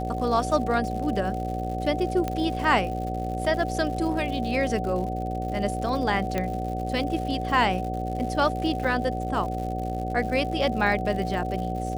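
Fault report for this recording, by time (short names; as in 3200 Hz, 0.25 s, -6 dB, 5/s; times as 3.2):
buzz 60 Hz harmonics 11 -31 dBFS
crackle 140/s -34 dBFS
tone 750 Hz -31 dBFS
2.28 pop -15 dBFS
6.38 pop -13 dBFS
8.84–8.85 gap 5 ms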